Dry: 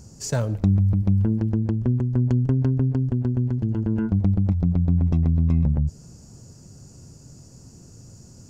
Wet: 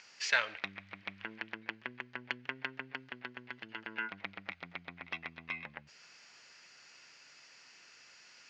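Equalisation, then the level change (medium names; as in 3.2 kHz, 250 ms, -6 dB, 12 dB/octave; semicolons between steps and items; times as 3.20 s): resonant high-pass 2.1 kHz, resonance Q 2.5; low-pass 3.7 kHz 24 dB/octave; +9.0 dB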